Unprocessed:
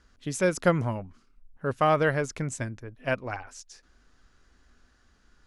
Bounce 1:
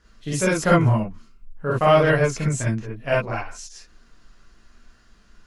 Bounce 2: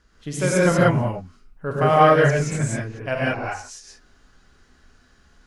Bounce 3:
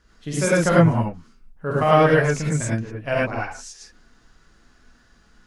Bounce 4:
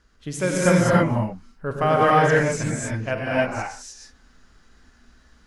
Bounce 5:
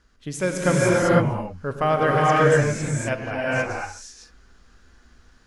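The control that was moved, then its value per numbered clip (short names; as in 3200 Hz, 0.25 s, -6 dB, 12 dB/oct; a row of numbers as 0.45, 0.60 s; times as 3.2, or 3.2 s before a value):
non-linear reverb, gate: 80, 210, 130, 340, 530 ms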